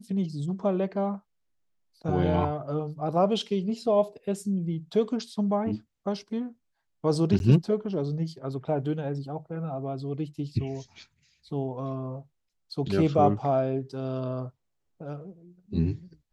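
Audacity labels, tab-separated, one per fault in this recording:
7.390000	7.400000	gap 11 ms

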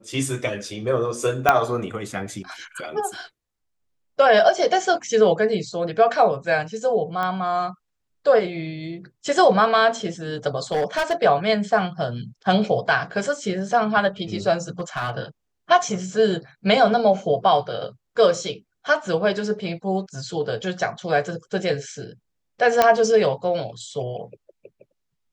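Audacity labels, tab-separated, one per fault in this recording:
1.490000	1.490000	pop -2 dBFS
7.230000	7.230000	pop -15 dBFS
10.720000	11.130000	clipped -17.5 dBFS
14.790000	15.110000	clipped -20.5 dBFS
22.820000	22.820000	pop -2 dBFS

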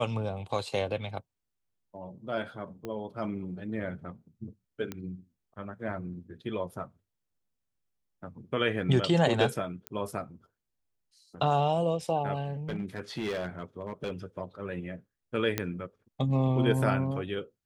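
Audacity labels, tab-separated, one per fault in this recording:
2.850000	2.850000	pop -24 dBFS
4.920000	4.920000	pop -21 dBFS
9.870000	9.870000	pop -19 dBFS
12.690000	14.110000	clipped -28.5 dBFS
15.580000	15.580000	pop -12 dBFS

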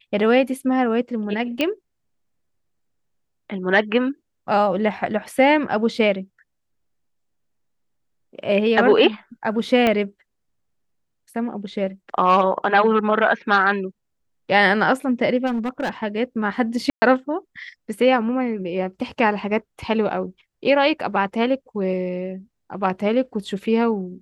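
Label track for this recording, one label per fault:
1.610000	1.610000	pop -8 dBFS
9.870000	9.870000	pop -7 dBFS
15.460000	15.890000	clipped -19.5 dBFS
16.900000	17.020000	gap 0.12 s

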